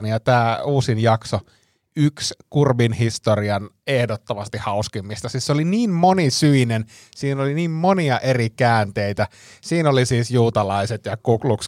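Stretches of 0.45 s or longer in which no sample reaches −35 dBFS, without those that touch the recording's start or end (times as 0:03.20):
0:01.41–0:01.97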